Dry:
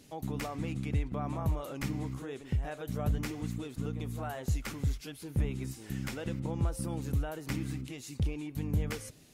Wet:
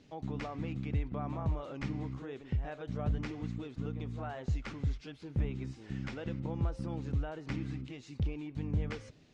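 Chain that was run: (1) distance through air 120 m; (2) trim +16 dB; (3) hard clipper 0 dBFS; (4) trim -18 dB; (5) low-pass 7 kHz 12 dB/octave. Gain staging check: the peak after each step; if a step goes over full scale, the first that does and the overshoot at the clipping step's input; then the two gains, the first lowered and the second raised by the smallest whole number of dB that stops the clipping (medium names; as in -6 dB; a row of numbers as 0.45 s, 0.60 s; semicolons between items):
-20.5 dBFS, -4.5 dBFS, -4.5 dBFS, -22.5 dBFS, -22.5 dBFS; nothing clips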